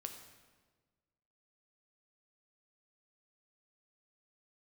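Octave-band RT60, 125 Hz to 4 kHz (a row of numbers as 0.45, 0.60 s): 1.8, 1.6, 1.5, 1.3, 1.2, 1.1 s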